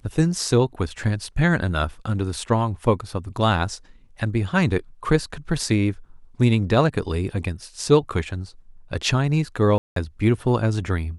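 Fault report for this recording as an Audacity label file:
9.780000	9.960000	gap 0.183 s

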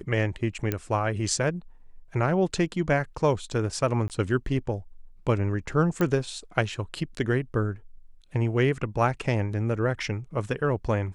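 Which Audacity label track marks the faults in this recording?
0.720000	0.720000	pop -12 dBFS
4.080000	4.100000	gap 18 ms
6.010000	6.010000	pop -13 dBFS

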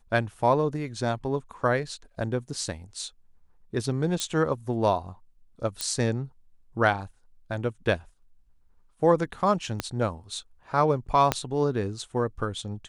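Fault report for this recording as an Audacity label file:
4.200000	4.200000	pop -14 dBFS
5.810000	5.810000	pop -12 dBFS
9.800000	9.800000	pop -12 dBFS
11.320000	11.320000	pop -7 dBFS

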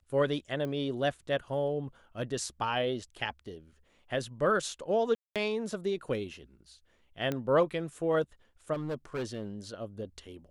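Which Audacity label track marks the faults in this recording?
0.650000	0.650000	pop -25 dBFS
5.150000	5.360000	gap 0.207 s
7.320000	7.320000	pop -19 dBFS
8.730000	9.450000	clipped -30.5 dBFS

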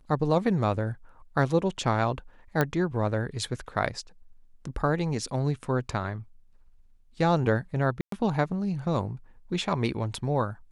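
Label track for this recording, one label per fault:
2.610000	2.610000	pop -11 dBFS
8.010000	8.120000	gap 0.113 s

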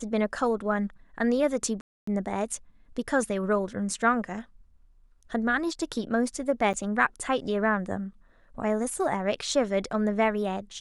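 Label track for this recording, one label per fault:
1.810000	2.070000	gap 0.264 s
6.730000	6.740000	gap 7.9 ms

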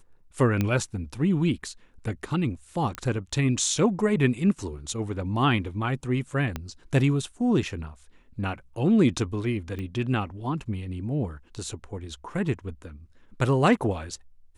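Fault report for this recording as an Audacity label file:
0.610000	0.610000	pop -12 dBFS
2.950000	2.950000	pop -17 dBFS
6.560000	6.560000	pop -16 dBFS
9.790000	9.790000	pop -23 dBFS

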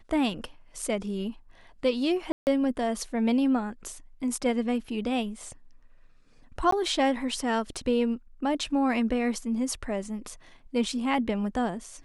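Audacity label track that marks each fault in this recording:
2.320000	2.470000	gap 0.149 s
6.710000	6.720000	gap 14 ms

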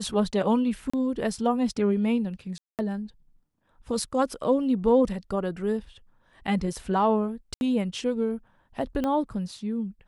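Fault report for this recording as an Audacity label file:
0.900000	0.940000	gap 35 ms
2.580000	2.790000	gap 0.208 s
7.540000	7.610000	gap 71 ms
9.040000	9.040000	pop -16 dBFS

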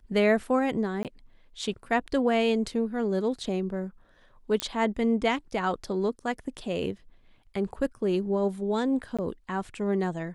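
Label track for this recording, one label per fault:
1.030000	1.050000	gap 18 ms
4.600000	4.600000	pop -11 dBFS
9.170000	9.190000	gap 16 ms

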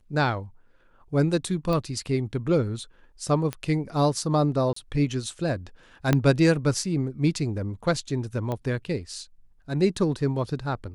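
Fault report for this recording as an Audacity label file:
1.730000	1.730000	pop -17 dBFS
3.530000	3.530000	pop -16 dBFS
4.730000	4.760000	gap 34 ms
6.130000	6.130000	pop -7 dBFS
8.520000	8.520000	pop -18 dBFS

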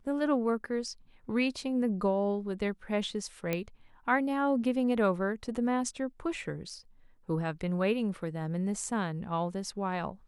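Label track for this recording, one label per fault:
3.530000	3.530000	pop -16 dBFS

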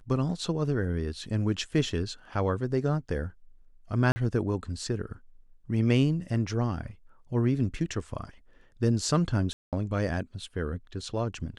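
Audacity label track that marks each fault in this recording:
4.120000	4.160000	gap 40 ms
9.530000	9.730000	gap 0.197 s

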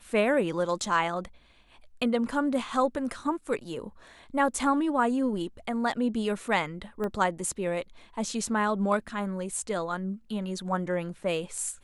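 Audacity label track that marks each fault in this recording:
7.040000	7.040000	pop -21 dBFS

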